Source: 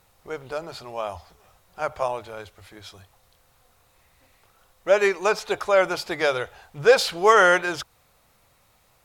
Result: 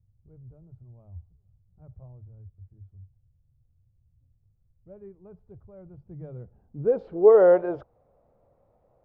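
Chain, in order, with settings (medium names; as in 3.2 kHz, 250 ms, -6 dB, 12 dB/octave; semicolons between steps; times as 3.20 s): low-pass sweep 110 Hz -> 570 Hz, 5.94–7.49 s; trim -2.5 dB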